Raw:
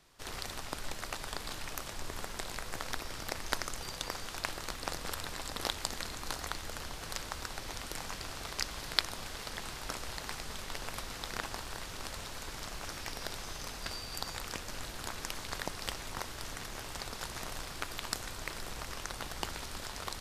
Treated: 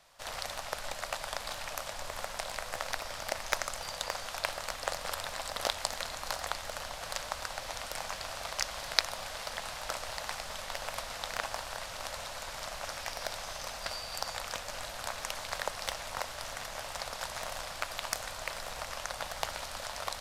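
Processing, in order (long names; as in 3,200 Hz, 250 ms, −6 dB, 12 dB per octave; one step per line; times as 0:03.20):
low shelf with overshoot 470 Hz −7 dB, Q 3
highs frequency-modulated by the lows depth 0.24 ms
level +2.5 dB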